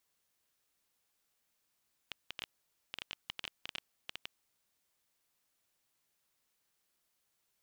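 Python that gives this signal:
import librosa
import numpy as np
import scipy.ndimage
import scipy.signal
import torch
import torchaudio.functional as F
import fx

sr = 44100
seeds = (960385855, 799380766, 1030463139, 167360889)

y = fx.geiger_clicks(sr, seeds[0], length_s=2.2, per_s=11.0, level_db=-22.5)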